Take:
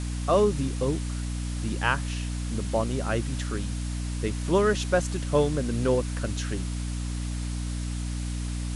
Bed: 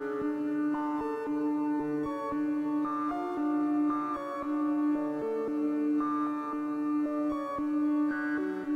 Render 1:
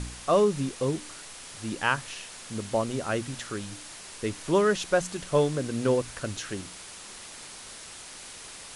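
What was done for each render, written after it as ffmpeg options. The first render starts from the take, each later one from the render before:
-af "bandreject=f=60:t=h:w=4,bandreject=f=120:t=h:w=4,bandreject=f=180:t=h:w=4,bandreject=f=240:t=h:w=4,bandreject=f=300:t=h:w=4"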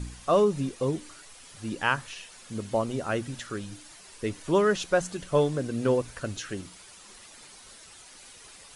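-af "afftdn=nr=9:nf=-44"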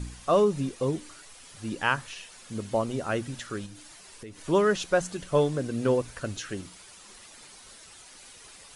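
-filter_complex "[0:a]asettb=1/sr,asplit=3[a][b][c];[a]atrim=end=3.664[d];[b]atrim=start=3.66:end=4.4,asetpts=PTS-STARTPTS,afade=t=in:d=0.004:c=qsin,afade=t=out:st=0.736:d=0.004:c=qsin,acompressor=threshold=-41dB:ratio=4:attack=3.2:release=140:knee=1:detection=peak[e];[c]atrim=start=4.396[f];[d][e]acrossfade=d=0.004:c1=hsin:c2=qsin[g];[g][f]acrossfade=d=0.004:c1=qsin:c2=hsin"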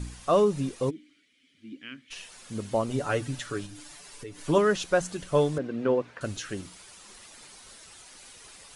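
-filter_complex "[0:a]asplit=3[a][b][c];[a]afade=t=out:st=0.89:d=0.02[d];[b]asplit=3[e][f][g];[e]bandpass=f=270:t=q:w=8,volume=0dB[h];[f]bandpass=f=2.29k:t=q:w=8,volume=-6dB[i];[g]bandpass=f=3.01k:t=q:w=8,volume=-9dB[j];[h][i][j]amix=inputs=3:normalize=0,afade=t=in:st=0.89:d=0.02,afade=t=out:st=2.1:d=0.02[k];[c]afade=t=in:st=2.1:d=0.02[l];[d][k][l]amix=inputs=3:normalize=0,asettb=1/sr,asplit=3[m][n][o];[m]atrim=end=2.904[p];[n]atrim=start=2.9:end=4.58,asetpts=PTS-STARTPTS,afade=t=in:d=0.004:c=qsin,afade=t=out:st=1.676:d=0.004:c=qsin,aecho=1:1:6.9:0.67,atrim=end_sample=74088[q];[o]atrim=start=4.576[r];[p][q]acrossfade=d=0.004:c1=hsin:c2=qsin[s];[s][r]acrossfade=d=0.004:c1=qsin:c2=hsin,asettb=1/sr,asplit=3[t][u][v];[t]atrim=end=5.584[w];[u]atrim=start=5.58:end=6.21,asetpts=PTS-STARTPTS,afade=t=in:d=0.004:c=qsin,afade=t=out:st=0.626:d=0.004:c=qsin,highpass=190,lowpass=2.6k[x];[v]atrim=start=6.206[y];[w][x]acrossfade=d=0.004:c1=hsin:c2=qsin[z];[z][y]acrossfade=d=0.004:c1=qsin:c2=hsin"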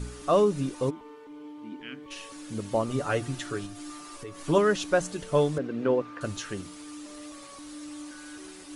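-filter_complex "[1:a]volume=-13.5dB[a];[0:a][a]amix=inputs=2:normalize=0"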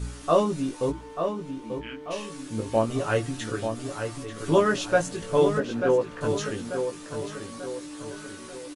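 -filter_complex "[0:a]asplit=2[a][b];[b]adelay=18,volume=-3dB[c];[a][c]amix=inputs=2:normalize=0,asplit=2[d][e];[e]adelay=889,lowpass=f=3.5k:p=1,volume=-7dB,asplit=2[f][g];[g]adelay=889,lowpass=f=3.5k:p=1,volume=0.48,asplit=2[h][i];[i]adelay=889,lowpass=f=3.5k:p=1,volume=0.48,asplit=2[j][k];[k]adelay=889,lowpass=f=3.5k:p=1,volume=0.48,asplit=2[l][m];[m]adelay=889,lowpass=f=3.5k:p=1,volume=0.48,asplit=2[n][o];[o]adelay=889,lowpass=f=3.5k:p=1,volume=0.48[p];[f][h][j][l][n][p]amix=inputs=6:normalize=0[q];[d][q]amix=inputs=2:normalize=0"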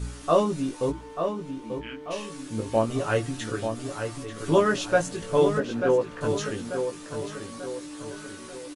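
-af anull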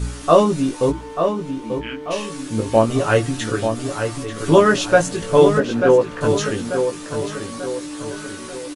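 -af "volume=8.5dB,alimiter=limit=-1dB:level=0:latency=1"

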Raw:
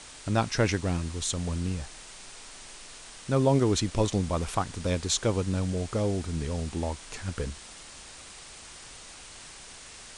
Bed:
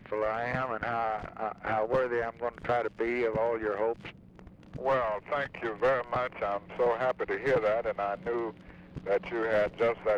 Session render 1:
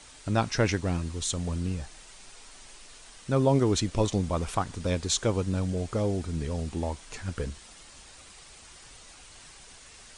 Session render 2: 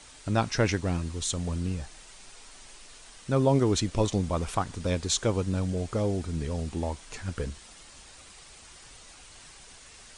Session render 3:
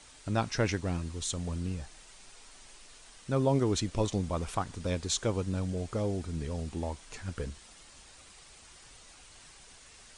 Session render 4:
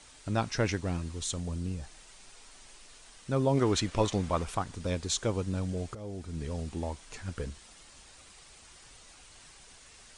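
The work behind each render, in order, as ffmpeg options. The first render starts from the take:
-af "afftdn=nr=6:nf=-47"
-af anull
-af "volume=-4dB"
-filter_complex "[0:a]asettb=1/sr,asplit=3[a][b][c];[a]atrim=end=1.404[d];[b]atrim=start=1.4:end=1.83,asetpts=PTS-STARTPTS,afade=t=in:d=0.004:c=qsin,afade=t=out:st=0.426:d=0.004:c=qsin,equalizer=f=1.7k:t=o:w=2.4:g=-4[e];[c]atrim=start=1.826[f];[d][e]acrossfade=d=0.004:c1=hsin:c2=qsin[g];[g][f]acrossfade=d=0.004:c1=qsin:c2=hsin,asettb=1/sr,asplit=3[h][i][j];[h]atrim=end=3.574[k];[i]atrim=start=3.57:end=4.43,asetpts=PTS-STARTPTS,afade=t=in:d=0.004:c=qsin,afade=t=out:st=0.856:d=0.004:c=qsin,equalizer=f=1.5k:w=0.47:g=7.5[l];[j]atrim=start=4.426[m];[k][l]acrossfade=d=0.004:c1=hsin:c2=qsin[n];[n][m]acrossfade=d=0.004:c1=qsin:c2=hsin,asplit=2[o][p];[o]atrim=end=5.95,asetpts=PTS-STARTPTS,afade=t=out:st=5.946:d=0.004:c=hsin:silence=0.177828[q];[p]atrim=start=5.95,asetpts=PTS-STARTPTS,afade=t=in:d=0.53:silence=0.177828[r];[q][r]concat=n=2:v=0:a=1"

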